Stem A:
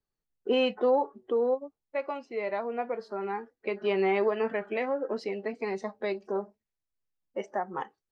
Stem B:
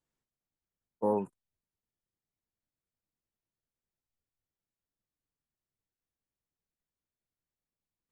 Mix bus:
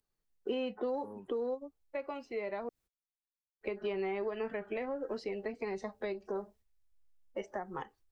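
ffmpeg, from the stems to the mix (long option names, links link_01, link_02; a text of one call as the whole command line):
ffmpeg -i stem1.wav -i stem2.wav -filter_complex "[0:a]asubboost=boost=8.5:cutoff=69,volume=1dB,asplit=3[link_01][link_02][link_03];[link_01]atrim=end=2.69,asetpts=PTS-STARTPTS,afade=type=out:start_time=2.686:duration=0.004:curve=hsin[link_04];[link_02]atrim=start=2.69:end=3.61,asetpts=PTS-STARTPTS,volume=0[link_05];[link_03]atrim=start=3.61,asetpts=PTS-STARTPTS,afade=type=in:duration=0.004:curve=hsin[link_06];[link_04][link_05][link_06]concat=n=3:v=0:a=1,asplit=2[link_07][link_08];[1:a]asubboost=boost=4.5:cutoff=55,acompressor=mode=upward:threshold=-47dB:ratio=2.5,volume=-14.5dB[link_09];[link_08]apad=whole_len=357691[link_10];[link_09][link_10]sidechaingate=range=-33dB:threshold=-57dB:ratio=16:detection=peak[link_11];[link_07][link_11]amix=inputs=2:normalize=0,acrossover=split=370|1900[link_12][link_13][link_14];[link_12]acompressor=threshold=-38dB:ratio=4[link_15];[link_13]acompressor=threshold=-41dB:ratio=4[link_16];[link_14]acompressor=threshold=-51dB:ratio=4[link_17];[link_15][link_16][link_17]amix=inputs=3:normalize=0" out.wav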